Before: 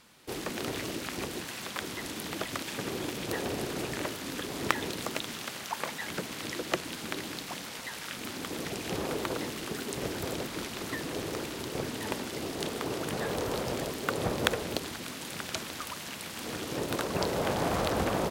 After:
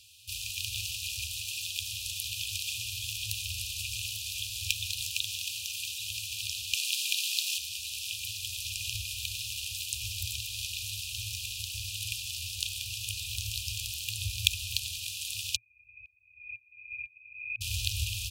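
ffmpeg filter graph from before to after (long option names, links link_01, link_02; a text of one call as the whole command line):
ffmpeg -i in.wav -filter_complex "[0:a]asettb=1/sr,asplit=3[link_01][link_02][link_03];[link_01]atrim=end=6.744[link_04];[link_02]atrim=start=6.74:end=7.58,asetpts=PTS-STARTPTS,afade=type=in:duration=0.004:curve=qsin,afade=type=out:start_time=0.836:duration=0.004:curve=qsin,highpass=frequency=430:width=0.5412,highpass=frequency=430:width=1.3066,acontrast=41[link_05];[link_03]atrim=start=7.576[link_06];[link_04][link_05]acrossfade=duration=0.004:curve1=hsin:curve2=qsin[link_07];[link_07][link_06]acrossfade=duration=0.004:curve1=qsin:curve2=hsin,asettb=1/sr,asplit=3[link_08][link_09][link_10];[link_08]atrim=end=15.564[link_11];[link_09]atrim=start=15.56:end=17.61,asetpts=PTS-STARTPTS,afade=type=in:duration=0.004:curve=qsin,afade=type=out:start_time=2.046:duration=0.004:curve=qsin,highpass=170,lowpass=frequency=2300:width_type=q:width=0.5098,lowpass=frequency=2300:width_type=q:width=0.6013,lowpass=frequency=2300:width_type=q:width=0.9,lowpass=frequency=2300:width_type=q:width=2.563,afreqshift=-2700,aeval=exprs='val(0)*pow(10,-30*if(lt(mod(-2*n/s,1),2*abs(-2)/1000),1-mod(-2*n/s,1)/(2*abs(-2)/1000),(mod(-2*n/s,1)-2*abs(-2)/1000)/(1-2*abs(-2)/1000))/20)':channel_layout=same[link_12];[link_10]atrim=start=17.606[link_13];[link_11][link_12]acrossfade=duration=0.004:curve1=hsin:curve2=qsin[link_14];[link_14][link_13]acrossfade=duration=0.004:curve1=qsin:curve2=hsin,afftfilt=real='re*(1-between(b*sr/4096,110,2400))':imag='im*(1-between(b*sr/4096,110,2400))':win_size=4096:overlap=0.75,highpass=57,volume=6dB" out.wav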